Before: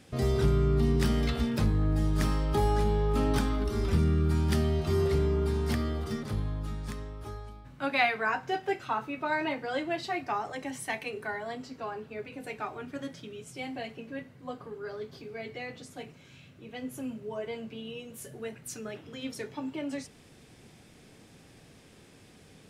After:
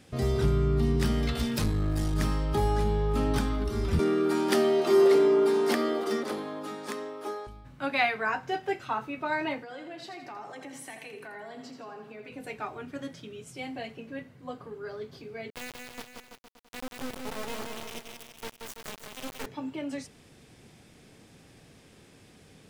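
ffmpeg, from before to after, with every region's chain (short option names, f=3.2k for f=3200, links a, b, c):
-filter_complex "[0:a]asettb=1/sr,asplit=3[a][b][c];[a]atrim=end=1.354[d];[b]atrim=start=1.35:end=2.14,asetpts=PTS-STARTPTS,afade=t=in:d=0.004:c=qsin,afade=t=out:st=0.786:d=0.004:c=qsin,highshelf=f=3k:g=10.5,aeval=exprs='clip(val(0),-1,0.0501)':c=same[e];[c]atrim=start=2.136[f];[d][e]acrossfade=d=0.004:c1=hsin:c2=qsin[g];[g][f]acrossfade=d=0.004:c1=qsin:c2=hsin,asettb=1/sr,asplit=3[h][i][j];[h]atrim=end=3.994[k];[i]atrim=start=3.99:end=7.47,asetpts=PTS-STARTPTS,afade=t=in:d=0.004:c=qsin,afade=t=out:st=3.476:d=0.004:c=qsin,highpass=f=290:w=0.5412,highpass=f=290:w=1.3066,acontrast=29,equalizer=f=410:w=0.33:g=5[l];[j]atrim=start=7.466[m];[k][l]acrossfade=d=0.004:c1=hsin:c2=qsin[n];[n][m]acrossfade=d=0.004:c1=qsin:c2=hsin,asettb=1/sr,asplit=3[o][p][q];[o]atrim=end=9.614[r];[p]atrim=start=9.61:end=12.31,asetpts=PTS-STARTPTS,afade=t=in:d=0.004:c=qsin,afade=t=out:st=2.696:d=0.004:c=qsin,highpass=f=140:w=0.5412,highpass=f=140:w=1.3066,acompressor=threshold=-41dB:ratio=4:attack=3.2:release=140:knee=1:detection=peak,aecho=1:1:83|166|249|332|415:0.422|0.19|0.0854|0.0384|0.0173,atrim=end_sample=119070[s];[q]atrim=start=12.306[t];[r][s]acrossfade=d=0.004:c1=hsin:c2=qsin[u];[u][t]acrossfade=d=0.004:c1=qsin:c2=hsin,asettb=1/sr,asplit=3[v][w][x];[v]atrim=end=15.504[y];[w]atrim=start=15.5:end=19.46,asetpts=PTS-STARTPTS,afade=t=in:d=0.004:c=qsin,afade=t=out:st=3.956:d=0.004:c=qsin,acrusher=bits=3:dc=4:mix=0:aa=0.000001,aecho=1:1:180|333|463|573.6|667.6:0.631|0.398|0.251|0.158|0.1,atrim=end_sample=174636[z];[x]atrim=start=19.456[aa];[y][z]acrossfade=d=0.004:c1=hsin:c2=qsin[ab];[ab][aa]acrossfade=d=0.004:c1=qsin:c2=hsin"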